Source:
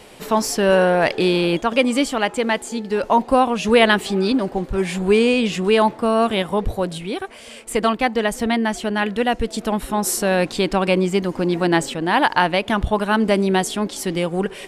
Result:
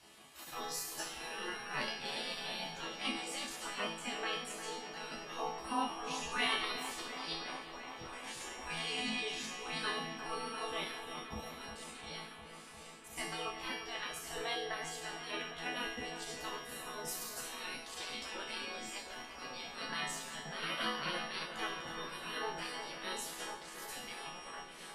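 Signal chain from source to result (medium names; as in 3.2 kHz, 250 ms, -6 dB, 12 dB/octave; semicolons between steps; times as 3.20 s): granular stretch 1.7×, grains 71 ms; whistle 5.6 kHz -45 dBFS; chord resonator E3 sus4, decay 0.7 s; spectral gate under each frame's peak -15 dB weak; feedback echo behind a low-pass 353 ms, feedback 80%, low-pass 2.7 kHz, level -10 dB; trim +10.5 dB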